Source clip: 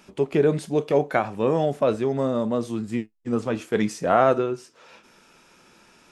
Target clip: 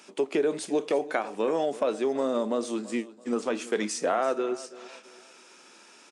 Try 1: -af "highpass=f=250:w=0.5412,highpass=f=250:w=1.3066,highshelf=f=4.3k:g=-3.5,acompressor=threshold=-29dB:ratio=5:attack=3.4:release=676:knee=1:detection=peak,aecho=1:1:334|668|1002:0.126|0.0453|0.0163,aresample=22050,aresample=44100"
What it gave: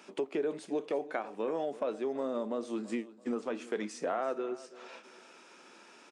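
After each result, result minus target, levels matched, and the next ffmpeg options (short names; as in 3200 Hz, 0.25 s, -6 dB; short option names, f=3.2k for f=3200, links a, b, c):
8000 Hz band -7.0 dB; compressor: peak gain reduction +7 dB
-af "highpass=f=250:w=0.5412,highpass=f=250:w=1.3066,highshelf=f=4.3k:g=7.5,acompressor=threshold=-29dB:ratio=5:attack=3.4:release=676:knee=1:detection=peak,aecho=1:1:334|668|1002:0.126|0.0453|0.0163,aresample=22050,aresample=44100"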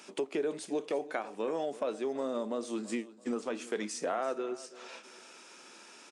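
compressor: peak gain reduction +7 dB
-af "highpass=f=250:w=0.5412,highpass=f=250:w=1.3066,highshelf=f=4.3k:g=7.5,acompressor=threshold=-20dB:ratio=5:attack=3.4:release=676:knee=1:detection=peak,aecho=1:1:334|668|1002:0.126|0.0453|0.0163,aresample=22050,aresample=44100"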